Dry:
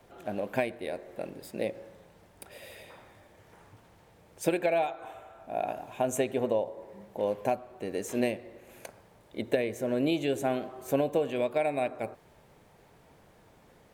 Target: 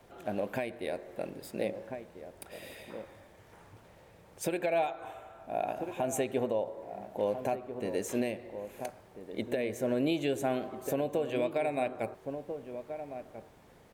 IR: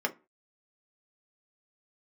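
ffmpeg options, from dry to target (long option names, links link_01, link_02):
-filter_complex "[0:a]asplit=2[link_01][link_02];[link_02]adelay=1341,volume=-11dB,highshelf=frequency=4000:gain=-30.2[link_03];[link_01][link_03]amix=inputs=2:normalize=0,alimiter=limit=-20dB:level=0:latency=1:release=183"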